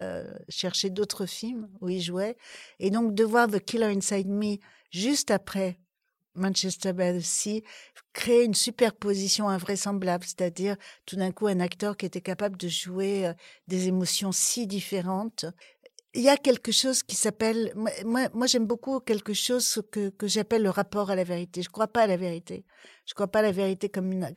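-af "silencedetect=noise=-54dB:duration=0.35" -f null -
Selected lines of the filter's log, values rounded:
silence_start: 5.76
silence_end: 6.35 | silence_duration: 0.60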